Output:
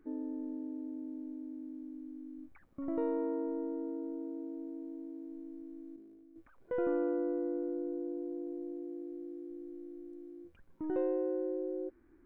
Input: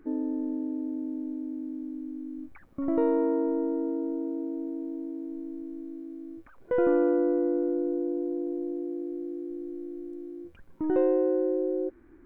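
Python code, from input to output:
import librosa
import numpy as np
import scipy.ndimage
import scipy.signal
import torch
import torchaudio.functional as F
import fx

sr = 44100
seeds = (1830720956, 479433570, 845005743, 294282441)

y = fx.level_steps(x, sr, step_db=10, at=(5.96, 6.36))
y = F.gain(torch.from_numpy(y), -9.0).numpy()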